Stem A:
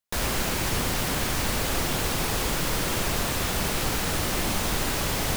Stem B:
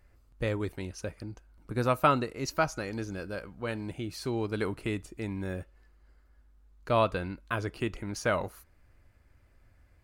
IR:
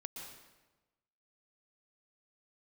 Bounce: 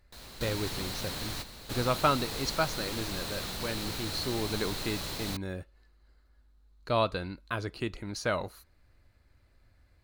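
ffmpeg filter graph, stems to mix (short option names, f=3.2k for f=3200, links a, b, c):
-filter_complex "[0:a]volume=-12dB[a];[1:a]volume=-2dB,asplit=2[b][c];[c]apad=whole_len=241101[d];[a][d]sidechaingate=range=-11dB:threshold=-51dB:ratio=16:detection=peak[e];[e][b]amix=inputs=2:normalize=0,equalizer=f=4.1k:w=4.2:g=12"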